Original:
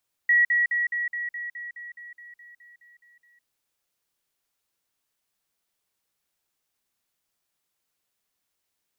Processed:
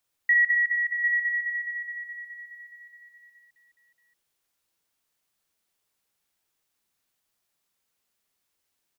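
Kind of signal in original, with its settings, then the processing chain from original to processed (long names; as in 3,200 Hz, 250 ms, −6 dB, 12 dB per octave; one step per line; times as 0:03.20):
level staircase 1,920 Hz −15.5 dBFS, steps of −3 dB, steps 15, 0.16 s 0.05 s
multi-tap delay 43/61/748 ms −9.5/−9/−8 dB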